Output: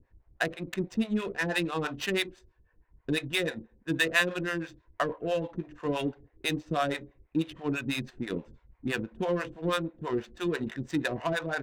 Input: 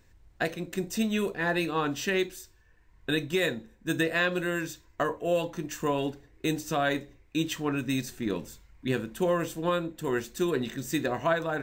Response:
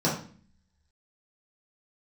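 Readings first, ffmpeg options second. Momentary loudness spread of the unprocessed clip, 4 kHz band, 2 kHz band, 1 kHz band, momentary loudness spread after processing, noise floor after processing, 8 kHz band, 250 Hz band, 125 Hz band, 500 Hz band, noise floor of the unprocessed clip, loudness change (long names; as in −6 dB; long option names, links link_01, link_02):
7 LU, +0.5 dB, 0.0 dB, −2.5 dB, 7 LU, −68 dBFS, −4.5 dB, −1.5 dB, −1.5 dB, −3.0 dB, −60 dBFS, −1.5 dB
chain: -filter_complex "[0:a]acrossover=split=530[link_01][link_02];[link_01]aeval=exprs='val(0)*(1-1/2+1/2*cos(2*PI*6.1*n/s))':channel_layout=same[link_03];[link_02]aeval=exprs='val(0)*(1-1/2-1/2*cos(2*PI*6.1*n/s))':channel_layout=same[link_04];[link_03][link_04]amix=inputs=2:normalize=0,adynamicequalizer=threshold=0.00447:dfrequency=3300:dqfactor=0.81:tfrequency=3300:tqfactor=0.81:attack=5:release=100:ratio=0.375:range=2:mode=boostabove:tftype=bell,adynamicsmooth=sensitivity=7.5:basefreq=1300,volume=3dB"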